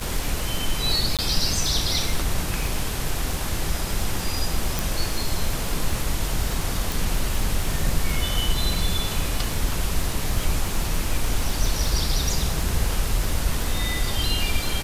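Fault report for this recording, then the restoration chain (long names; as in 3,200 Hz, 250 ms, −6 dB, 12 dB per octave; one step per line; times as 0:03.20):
surface crackle 56 per second −26 dBFS
0:01.17–0:01.19: drop-out 17 ms
0:04.79: click
0:06.92: click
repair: click removal
repair the gap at 0:01.17, 17 ms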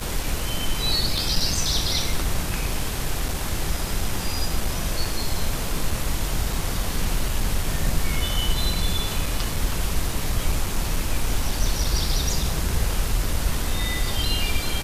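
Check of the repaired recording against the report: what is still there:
none of them is left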